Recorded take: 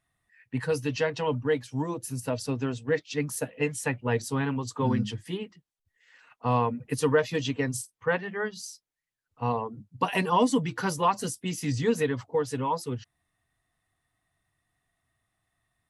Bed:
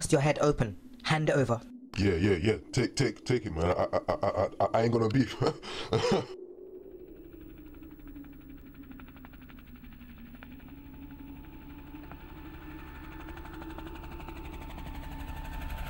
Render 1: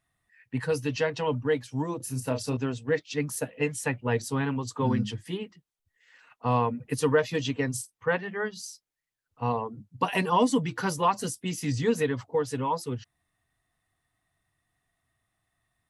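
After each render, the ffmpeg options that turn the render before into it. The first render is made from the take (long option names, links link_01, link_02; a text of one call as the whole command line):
ffmpeg -i in.wav -filter_complex "[0:a]asettb=1/sr,asplit=3[link_01][link_02][link_03];[link_01]atrim=end=1.974[link_04];[link_02]atrim=start=1.97:end=2.57,asetpts=PTS-STARTPTS,afade=type=in:duration=0.004:curve=qsin,afade=type=out:start_time=0.596:duration=0.004:curve=qsin,asplit=2[link_05][link_06];[link_06]adelay=31,volume=-6.5dB[link_07];[link_05][link_07]amix=inputs=2:normalize=0,atrim=end_sample=26460[link_08];[link_03]atrim=start=2.566[link_09];[link_04][link_08]acrossfade=duration=0.004:curve1=hsin:curve2=qsin[link_10];[link_10][link_09]acrossfade=duration=0.004:curve1=qsin:curve2=hsin" out.wav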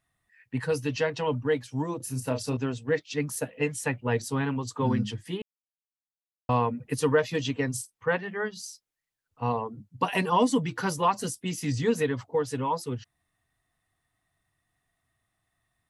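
ffmpeg -i in.wav -filter_complex "[0:a]asplit=3[link_01][link_02][link_03];[link_01]atrim=end=5.42,asetpts=PTS-STARTPTS,afade=type=out:start_time=5.416:duration=0.004:curve=hsin[link_04];[link_02]atrim=start=5.42:end=6.49,asetpts=PTS-STARTPTS,volume=0[link_05];[link_03]atrim=start=6.49,asetpts=PTS-STARTPTS,afade=type=in:duration=0.004:curve=hsin[link_06];[link_04][link_05][link_06]concat=n=3:v=0:a=1" out.wav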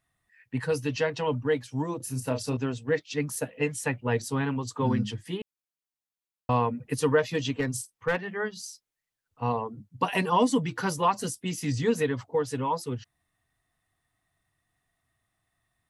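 ffmpeg -i in.wav -filter_complex "[0:a]asettb=1/sr,asplit=3[link_01][link_02][link_03];[link_01]atrim=end=7.524[link_04];[link_02]atrim=start=7.52:end=8.26,asetpts=PTS-STARTPTS,afade=type=in:duration=0.004:curve=qsin,afade=type=out:start_time=0.736:duration=0.004:curve=qsin,aeval=exprs='clip(val(0),-1,0.075)':channel_layout=same[link_05];[link_03]atrim=start=8.256[link_06];[link_04][link_05]acrossfade=duration=0.004:curve1=hsin:curve2=qsin[link_07];[link_07][link_06]acrossfade=duration=0.004:curve1=qsin:curve2=hsin" out.wav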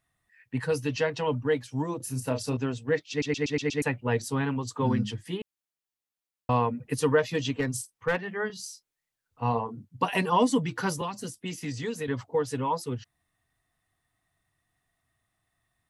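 ffmpeg -i in.wav -filter_complex "[0:a]asettb=1/sr,asplit=3[link_01][link_02][link_03];[link_01]atrim=end=8.474[link_04];[link_02]atrim=start=8.47:end=9.85,asetpts=PTS-STARTPTS,afade=type=in:duration=0.004:curve=qsin,afade=type=out:start_time=1.376:duration=0.004:curve=qsin,asplit=2[link_05][link_06];[link_06]adelay=26,volume=-7.5dB[link_07];[link_05][link_07]amix=inputs=2:normalize=0,atrim=end_sample=60858[link_08];[link_03]atrim=start=9.846[link_09];[link_04][link_08]acrossfade=duration=0.004:curve1=hsin:curve2=qsin[link_10];[link_10][link_09]acrossfade=duration=0.004:curve1=qsin:curve2=hsin,asettb=1/sr,asplit=3[link_11][link_12][link_13];[link_11]atrim=end=11.014[link_14];[link_12]atrim=start=11.01:end=12.08,asetpts=PTS-STARTPTS,afade=type=in:duration=0.004:curve=qsin,afade=type=out:start_time=1.066:duration=0.004:curve=qsin,acrossover=split=330|3000[link_15][link_16][link_17];[link_15]acompressor=threshold=-36dB:ratio=4[link_18];[link_16]acompressor=threshold=-35dB:ratio=4[link_19];[link_17]acompressor=threshold=-43dB:ratio=4[link_20];[link_18][link_19][link_20]amix=inputs=3:normalize=0[link_21];[link_13]atrim=start=12.076[link_22];[link_14][link_21]acrossfade=duration=0.004:curve1=hsin:curve2=qsin[link_23];[link_23][link_22]acrossfade=duration=0.004:curve1=qsin:curve2=hsin,asplit=7[link_24][link_25][link_26][link_27][link_28][link_29][link_30];[link_24]atrim=end=3.222[link_31];[link_25]atrim=start=3.098:end=3.222[link_32];[link_26]atrim=start=3.098:end=3.222[link_33];[link_27]atrim=start=3.098:end=3.222[link_34];[link_28]atrim=start=3.098:end=3.222[link_35];[link_29]atrim=start=3.098:end=3.222[link_36];[link_30]atrim=start=3.818[link_37];[link_31][link_32]acrossfade=duration=0.004:curve1=hsin:curve2=hsin[link_38];[link_38][link_33]acrossfade=duration=0.004:curve1=hsin:curve2=hsin[link_39];[link_39][link_34]acrossfade=duration=0.004:curve1=hsin:curve2=hsin[link_40];[link_40][link_35]acrossfade=duration=0.004:curve1=hsin:curve2=hsin[link_41];[link_41][link_36]acrossfade=duration=0.004:curve1=hsin:curve2=hsin[link_42];[link_42][link_37]acrossfade=duration=0.004:curve1=hsin:curve2=hsin" out.wav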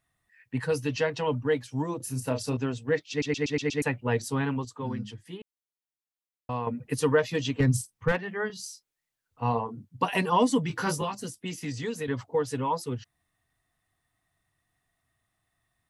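ffmpeg -i in.wav -filter_complex "[0:a]asettb=1/sr,asplit=3[link_01][link_02][link_03];[link_01]atrim=end=7.604[link_04];[link_02]atrim=start=7.6:end=8.12,asetpts=PTS-STARTPTS,afade=type=in:duration=0.004:curve=qsin,afade=type=out:start_time=0.516:duration=0.004:curve=qsin,bass=frequency=250:gain=12,treble=frequency=4000:gain=0[link_05];[link_03]atrim=start=8.116[link_06];[link_04][link_05]acrossfade=duration=0.004:curve1=hsin:curve2=qsin[link_07];[link_07][link_06]acrossfade=duration=0.004:curve1=qsin:curve2=hsin,asettb=1/sr,asplit=3[link_08][link_09][link_10];[link_08]atrim=end=10.684[link_11];[link_09]atrim=start=10.68:end=11.15,asetpts=PTS-STARTPTS,afade=type=in:duration=0.004:curve=qsin,afade=type=out:start_time=0.466:duration=0.004:curve=qsin,asplit=2[link_12][link_13];[link_13]adelay=19,volume=-3.5dB[link_14];[link_12][link_14]amix=inputs=2:normalize=0,atrim=end_sample=20727[link_15];[link_10]atrim=start=11.146[link_16];[link_11][link_15]acrossfade=duration=0.004:curve1=hsin:curve2=qsin[link_17];[link_17][link_16]acrossfade=duration=0.004:curve1=qsin:curve2=hsin,asplit=3[link_18][link_19][link_20];[link_18]atrim=end=4.652[link_21];[link_19]atrim=start=4.648:end=6.672,asetpts=PTS-STARTPTS,volume=-7.5dB[link_22];[link_20]atrim=start=6.668[link_23];[link_21][link_22]acrossfade=duration=0.004:curve1=hsin:curve2=hsin[link_24];[link_24][link_23]acrossfade=duration=0.004:curve1=hsin:curve2=hsin" out.wav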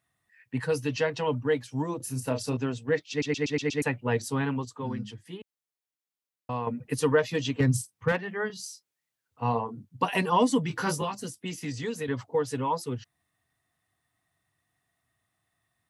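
ffmpeg -i in.wav -af "highpass=81" out.wav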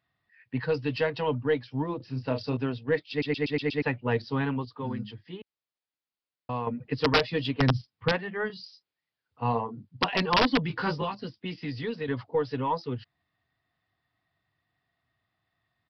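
ffmpeg -i in.wav -af "aresample=11025,aeval=exprs='(mod(5.62*val(0)+1,2)-1)/5.62':channel_layout=same,aresample=44100,aeval=exprs='0.282*(cos(1*acos(clip(val(0)/0.282,-1,1)))-cos(1*PI/2))+0.00316*(cos(6*acos(clip(val(0)/0.282,-1,1)))-cos(6*PI/2))':channel_layout=same" out.wav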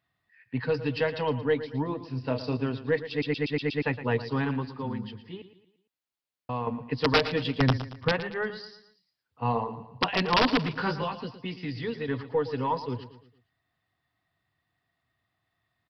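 ffmpeg -i in.wav -af "aecho=1:1:114|228|342|456:0.224|0.0963|0.0414|0.0178" out.wav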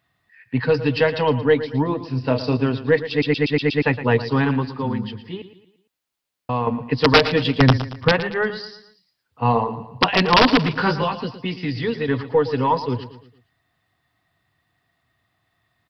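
ffmpeg -i in.wav -af "volume=9dB,alimiter=limit=-3dB:level=0:latency=1" out.wav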